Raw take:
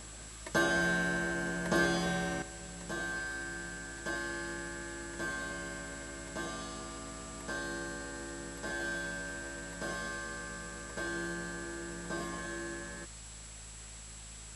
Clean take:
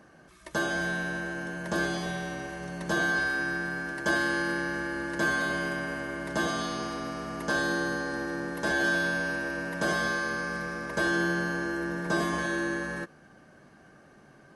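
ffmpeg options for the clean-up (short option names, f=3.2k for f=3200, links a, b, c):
-af "bandreject=f=53.9:t=h:w=4,bandreject=f=107.8:t=h:w=4,bandreject=f=161.7:t=h:w=4,bandreject=f=215.6:t=h:w=4,bandreject=f=7.7k:w=30,afwtdn=0.0032,asetnsamples=n=441:p=0,asendcmd='2.42 volume volume 11dB',volume=0dB"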